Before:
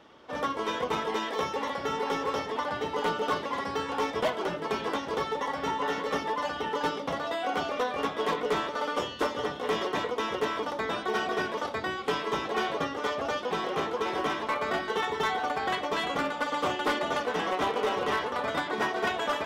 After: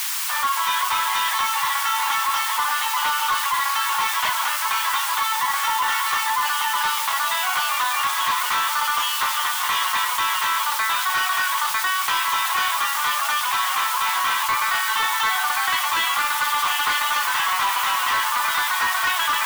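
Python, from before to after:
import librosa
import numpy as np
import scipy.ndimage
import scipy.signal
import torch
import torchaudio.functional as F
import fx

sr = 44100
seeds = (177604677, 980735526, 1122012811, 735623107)

p1 = fx.notch(x, sr, hz=5300.0, q=12.0)
p2 = fx.dmg_noise_colour(p1, sr, seeds[0], colour='white', level_db=-42.0)
p3 = scipy.signal.sosfilt(scipy.signal.ellip(4, 1.0, 70, 960.0, 'highpass', fs=sr, output='sos'), p2)
p4 = fx.echo_tape(p3, sr, ms=367, feedback_pct=90, wet_db=-15.0, lp_hz=1800.0, drive_db=22.0, wow_cents=23)
p5 = 10.0 ** (-28.5 / 20.0) * (np.abs((p4 / 10.0 ** (-28.5 / 20.0) + 3.0) % 4.0 - 2.0) - 1.0)
p6 = p4 + (p5 * librosa.db_to_amplitude(-3.5))
p7 = fx.env_flatten(p6, sr, amount_pct=50)
y = p7 * librosa.db_to_amplitude(6.0)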